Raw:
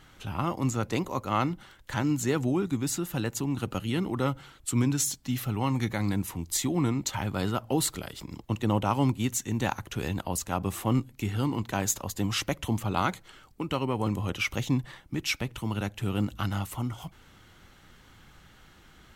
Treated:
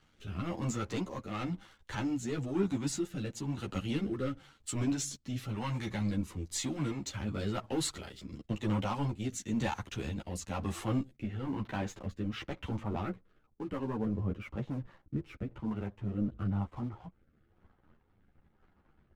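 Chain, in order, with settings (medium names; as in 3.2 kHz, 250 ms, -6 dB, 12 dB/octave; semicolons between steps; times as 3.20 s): low-pass 7.3 kHz 12 dB/octave, from 11.15 s 2.4 kHz, from 12.82 s 1.1 kHz; waveshaping leveller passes 2; rotary cabinet horn 1 Hz; three-phase chorus; trim -6.5 dB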